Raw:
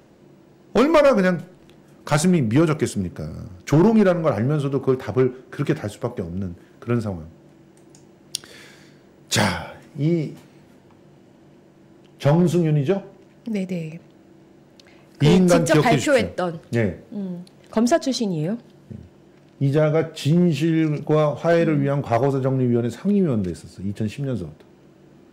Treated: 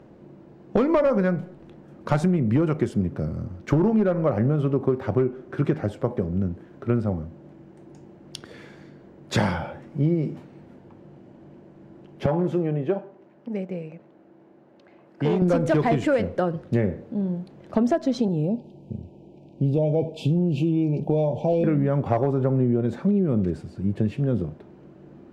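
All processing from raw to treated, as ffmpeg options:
ffmpeg -i in.wav -filter_complex "[0:a]asettb=1/sr,asplit=3[link_01][link_02][link_03];[link_01]atrim=end=12.264[link_04];[link_02]atrim=start=12.26:end=15.42,asetpts=PTS-STARTPTS,afade=type=in:duration=0.004:curve=qsin,afade=type=out:start_time=3.156:duration=0.004:curve=qsin,highpass=frequency=530:poles=1,highshelf=frequency=2900:gain=-10.5[link_05];[link_03]atrim=start=15.416[link_06];[link_04][link_05]acrossfade=duration=0.004:curve1=hsin:curve2=qsin[link_07];[link_07][link_06]acrossfade=duration=0.004:curve1=qsin:curve2=hsin,asettb=1/sr,asplit=3[link_08][link_09][link_10];[link_08]atrim=end=18.284[link_11];[link_09]atrim=start=18.28:end=21.64,asetpts=PTS-STARTPTS,afade=type=in:duration=0.004:curve=qsin,afade=type=out:start_time=3.356:duration=0.004:curve=qsin,asuperstop=centerf=1500:order=20:qfactor=1.1,acompressor=threshold=-25dB:ratio=1.5:attack=3.2:release=140:knee=1:detection=peak[link_12];[link_10]atrim=start=21.636[link_13];[link_11][link_12]acrossfade=duration=0.004:curve1=hsin:curve2=qsin[link_14];[link_14][link_13]acrossfade=duration=0.004:curve1=qsin:curve2=hsin,lowpass=frequency=1000:poles=1,acompressor=threshold=-21dB:ratio=6,volume=3.5dB" out.wav

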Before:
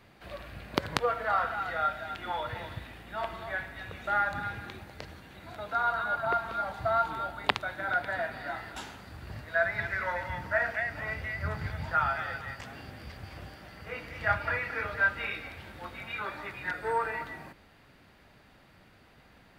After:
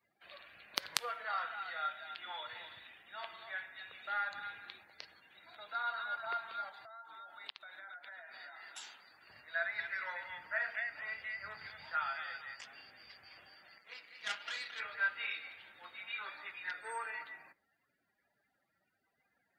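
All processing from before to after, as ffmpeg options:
ffmpeg -i in.wav -filter_complex "[0:a]asettb=1/sr,asplit=3[link_01][link_02][link_03];[link_01]atrim=end=6.694[link_04];[link_02]atrim=start=6.69:end=9.29,asetpts=PTS-STARTPTS,afade=type=in:duration=0.004:curve=qsin,afade=type=out:start_time=2.596:duration=0.004:curve=qsin,highpass=frequency=260:poles=1,acompressor=threshold=-38dB:ratio=10:attack=3.2:release=140:knee=1:detection=peak[link_05];[link_03]atrim=start=9.286[link_06];[link_04][link_05]acrossfade=duration=0.004:curve1=hsin:curve2=qsin[link_07];[link_07][link_06]acrossfade=duration=0.004:curve1=qsin:curve2=hsin,asettb=1/sr,asplit=3[link_08][link_09][link_10];[link_08]atrim=end=13.784[link_11];[link_09]atrim=start=13.78:end=14.8,asetpts=PTS-STARTPTS,afade=type=in:duration=0.004:curve=qsin,afade=type=out:start_time=1.016:duration=0.004:curve=qsin,highpass=frequency=150:width=0.5412,highpass=frequency=150:width=1.3066,aeval=exprs='max(val(0),0)':channel_layout=same[link_12];[link_10]atrim=start=14.796[link_13];[link_11][link_12]acrossfade=duration=0.004:curve1=hsin:curve2=qsin[link_14];[link_14][link_13]acrossfade=duration=0.004:curve1=qsin:curve2=hsin,afftdn=noise_reduction=27:noise_floor=-54,aderivative,volume=5.5dB" out.wav

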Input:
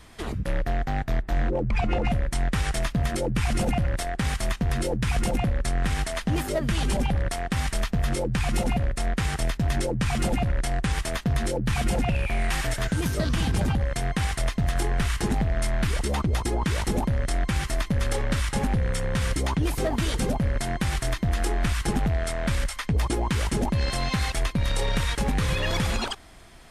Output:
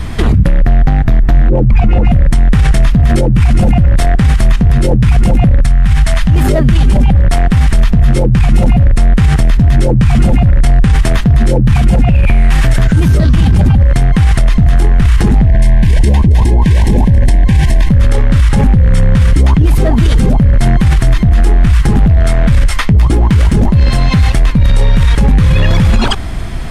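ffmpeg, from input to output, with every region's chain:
ffmpeg -i in.wav -filter_complex "[0:a]asettb=1/sr,asplit=3[link_01][link_02][link_03];[link_01]atrim=end=5.624[link_04];[link_02]atrim=start=5.62:end=6.36,asetpts=PTS-STARTPTS,afade=type=in:duration=0.004:curve=qsin,afade=type=out:start_time=0.736:duration=0.004:curve=qsin,equalizer=frequency=370:width=1.1:gain=-13,acompressor=threshold=-32dB:ratio=6:attack=3.2:release=140:knee=1:detection=peak[link_05];[link_03]atrim=start=6.356[link_06];[link_04][link_05]acrossfade=duration=0.004:curve1=hsin:curve2=qsin[link_07];[link_07][link_06]acrossfade=duration=0.004:curve1=qsin:curve2=hsin,asettb=1/sr,asplit=3[link_08][link_09][link_10];[link_08]atrim=end=15.464[link_11];[link_09]atrim=start=15.46:end=17.89,asetpts=PTS-STARTPTS,afade=type=in:duration=0.004:curve=qsin,afade=type=out:start_time=2.426:duration=0.004:curve=qsin,asuperstop=centerf=1300:order=12:qfactor=3.3,aecho=1:1:273:0.168,atrim=end_sample=107163[link_12];[link_10]atrim=start=17.886[link_13];[link_11][link_12]acrossfade=duration=0.004:curve1=hsin:curve2=qsin[link_14];[link_14][link_13]acrossfade=duration=0.004:curve1=qsin:curve2=hsin,asettb=1/sr,asplit=3[link_15][link_16][link_17];[link_15]atrim=end=21.804[link_18];[link_16]atrim=start=21.8:end=24.59,asetpts=PTS-STARTPTS,afade=type=in:duration=0.004:curve=qsin,afade=type=out:start_time=2.786:duration=0.004:curve=qsin,asoftclip=type=hard:threshold=-20dB,flanger=delay=6.3:depth=6.8:regen=76:speed=1.5:shape=triangular[link_19];[link_17]atrim=start=24.586[link_20];[link_18][link_19]acrossfade=duration=0.004:curve1=hsin:curve2=qsin[link_21];[link_21][link_20]acrossfade=duration=0.004:curve1=qsin:curve2=hsin,bass=frequency=250:gain=12,treble=frequency=4000:gain=-5,alimiter=level_in=22.5dB:limit=-1dB:release=50:level=0:latency=1,volume=-1dB" out.wav

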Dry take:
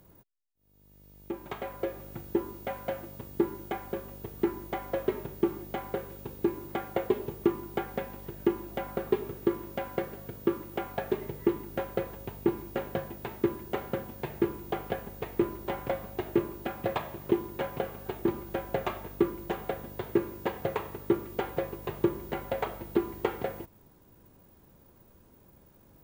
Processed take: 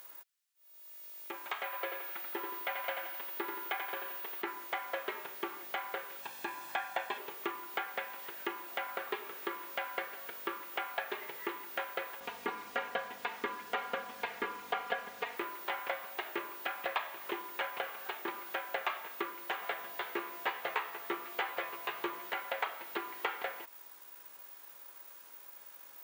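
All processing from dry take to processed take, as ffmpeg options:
ffmpeg -i in.wav -filter_complex "[0:a]asettb=1/sr,asplit=3[link_01][link_02][link_03];[link_01]atrim=end=1.644[link_04];[link_02]atrim=start=1.64:end=4.42,asetpts=PTS-STARTPTS,afade=type=in:duration=0.004:curve=qsin,afade=type=out:start_time=2.776:duration=0.004:curve=qsin,highpass=180,aemphasis=mode=production:type=50fm,aecho=1:1:86|172|258|344|430:0.501|0.226|0.101|0.0457|0.0206,atrim=end_sample=122598[link_05];[link_03]atrim=start=4.416[link_06];[link_04][link_05]acrossfade=duration=0.004:curve1=hsin:curve2=qsin[link_07];[link_07][link_06]acrossfade=duration=0.004:curve1=qsin:curve2=hsin,asettb=1/sr,asplit=3[link_08][link_09][link_10];[link_08]atrim=end=6.224[link_11];[link_09]atrim=start=6.22:end=7.18,asetpts=PTS-STARTPTS,afade=type=in:duration=0.004:curve=qsin,afade=type=out:start_time=0.956:duration=0.004:curve=qsin,aecho=1:1:1.2:0.59,atrim=end_sample=42336,acrossover=split=9900[link_12][link_13];[link_13]acompressor=threshold=-56dB:ratio=4:attack=1:release=60[link_14];[link_12][link_14]amix=inputs=2:normalize=0[link_15];[link_10]atrim=start=7.176[link_16];[link_11][link_15]acrossfade=duration=0.004:curve1=hsin:curve2=qsin[link_17];[link_17][link_16]acrossfade=duration=0.004:curve1=qsin:curve2=hsin,asettb=1/sr,asplit=3[link_18][link_19][link_20];[link_18]atrim=end=12.204[link_21];[link_19]atrim=start=12.2:end=15.37,asetpts=PTS-STARTPTS,afade=type=in:duration=0.004:curve=qsin,afade=type=out:start_time=3.166:duration=0.004:curve=qsin,aemphasis=mode=reproduction:type=bsi,aecho=1:1:4.2:0.98,atrim=end_sample=139797[link_22];[link_20]atrim=start=15.366[link_23];[link_21][link_22]acrossfade=duration=0.004:curve1=hsin:curve2=qsin[link_24];[link_24][link_23]acrossfade=duration=0.004:curve1=qsin:curve2=hsin,asettb=1/sr,asplit=3[link_25][link_26][link_27];[link_25]atrim=end=19.614[link_28];[link_26]atrim=start=19.61:end=22.3,asetpts=PTS-STARTPTS,afade=type=in:duration=0.004:curve=qsin,afade=type=out:start_time=2.686:duration=0.004:curve=qsin,asplit=2[link_29][link_30];[link_30]adelay=14,volume=-4dB[link_31];[link_29][link_31]amix=inputs=2:normalize=0,atrim=end_sample=118629,aeval=exprs='val(0)+0.002*sin(2*PI*690*n/s)':channel_layout=same[link_32];[link_27]atrim=start=22.296[link_33];[link_28][link_32]acrossfade=duration=0.004:curve1=hsin:curve2=qsin[link_34];[link_34][link_33]acrossfade=duration=0.004:curve1=qsin:curve2=hsin,acrossover=split=3700[link_35][link_36];[link_36]acompressor=threshold=-57dB:ratio=4:attack=1:release=60[link_37];[link_35][link_37]amix=inputs=2:normalize=0,highpass=1300,acompressor=threshold=-55dB:ratio=1.5,volume=12dB" out.wav

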